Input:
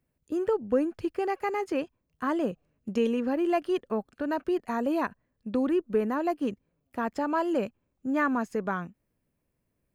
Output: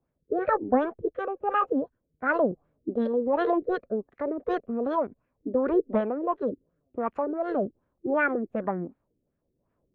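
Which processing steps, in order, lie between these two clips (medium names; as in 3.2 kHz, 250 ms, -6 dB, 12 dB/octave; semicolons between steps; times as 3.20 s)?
formant shift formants +5 st; rotary cabinet horn 1.1 Hz; LFO low-pass sine 2.7 Hz 340–1600 Hz; trim +1.5 dB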